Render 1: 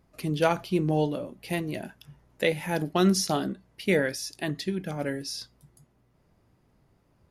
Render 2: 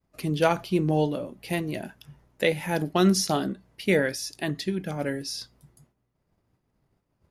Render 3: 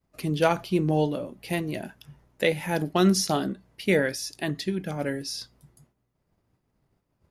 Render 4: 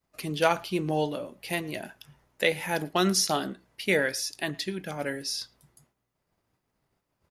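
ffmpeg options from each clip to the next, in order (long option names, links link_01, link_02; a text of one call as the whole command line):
ffmpeg -i in.wav -af "agate=range=-33dB:threshold=-57dB:ratio=3:detection=peak,volume=1.5dB" out.wav
ffmpeg -i in.wav -af "asoftclip=type=hard:threshold=-10dB" out.wav
ffmpeg -i in.wav -filter_complex "[0:a]lowshelf=frequency=460:gain=-10,asplit=2[link_01][link_02];[link_02]adelay=110,highpass=300,lowpass=3400,asoftclip=type=hard:threshold=-20dB,volume=-24dB[link_03];[link_01][link_03]amix=inputs=2:normalize=0,volume=2dB" out.wav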